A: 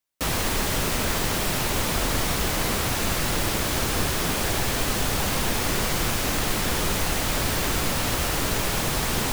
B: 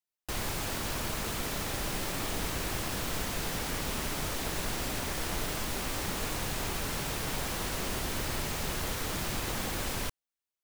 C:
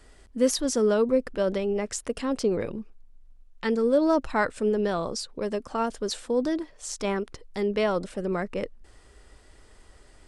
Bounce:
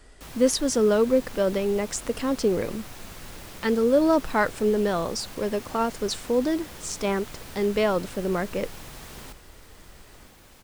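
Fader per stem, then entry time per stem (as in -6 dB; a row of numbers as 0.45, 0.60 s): -18.0, -18.5, +2.0 dB; 0.00, 0.65, 0.00 s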